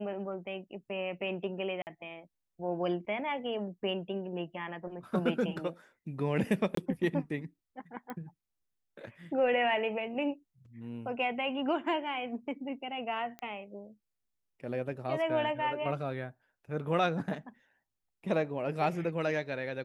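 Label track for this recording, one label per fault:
1.820000	1.870000	drop-out 49 ms
6.750000	6.770000	drop-out 23 ms
8.100000	8.100000	click −27 dBFS
13.390000	13.390000	click −28 dBFS

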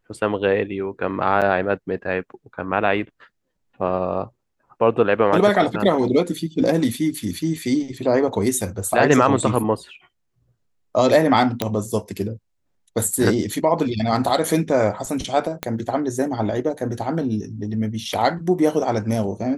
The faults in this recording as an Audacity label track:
1.410000	1.420000	drop-out 7.4 ms
11.620000	11.620000	click −6 dBFS
15.630000	15.630000	click −9 dBFS

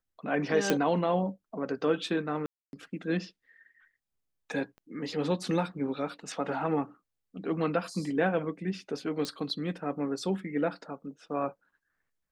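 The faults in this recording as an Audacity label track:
0.700000	0.700000	click −10 dBFS
2.460000	2.730000	drop-out 271 ms
4.780000	4.780000	click −39 dBFS
9.250000	9.250000	click −20 dBFS

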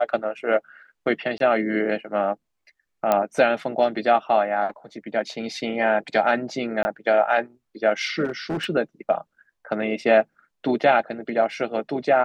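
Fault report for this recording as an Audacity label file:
1.380000	1.400000	drop-out 22 ms
3.120000	3.120000	click −7 dBFS
6.830000	6.850000	drop-out 20 ms
8.240000	8.660000	clipping −22.5 dBFS

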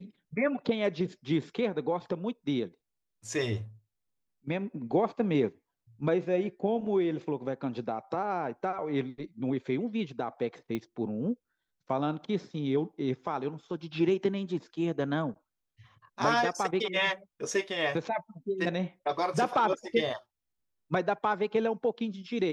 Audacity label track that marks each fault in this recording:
10.750000	10.750000	click −21 dBFS

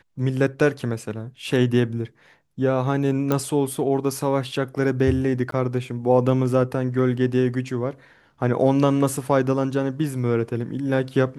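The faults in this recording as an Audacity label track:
3.320000	3.320000	click −9 dBFS
5.510000	5.520000	drop-out 13 ms

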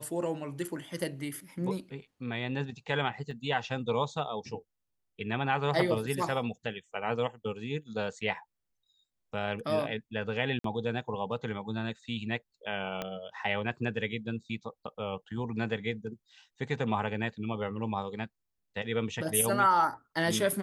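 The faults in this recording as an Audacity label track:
3.310000	3.310000	drop-out 2.2 ms
10.590000	10.640000	drop-out 53 ms
13.020000	13.020000	click −19 dBFS

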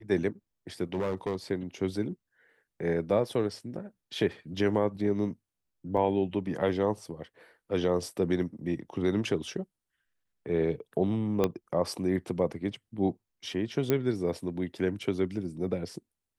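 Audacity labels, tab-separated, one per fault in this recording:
0.940000	1.360000	clipping −26 dBFS
5.970000	5.970000	drop-out 5 ms
11.440000	11.440000	click −13 dBFS
13.900000	13.900000	click −12 dBFS

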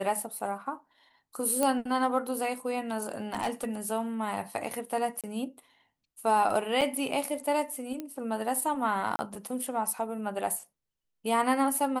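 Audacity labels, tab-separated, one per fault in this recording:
1.630000	1.630000	click −13 dBFS
3.340000	3.650000	clipping −24.5 dBFS
5.210000	5.240000	drop-out 27 ms
6.810000	6.820000	drop-out 5.7 ms
8.000000	8.000000	click −22 dBFS
9.160000	9.190000	drop-out 30 ms

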